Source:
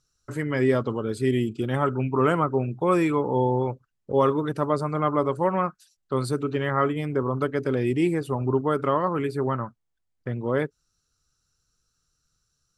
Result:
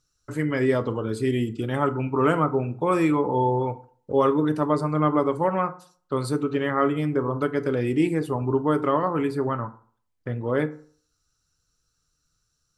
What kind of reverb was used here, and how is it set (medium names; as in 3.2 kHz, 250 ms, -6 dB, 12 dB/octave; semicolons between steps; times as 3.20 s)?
FDN reverb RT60 0.48 s, low-frequency decay 0.95×, high-frequency decay 0.55×, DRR 9 dB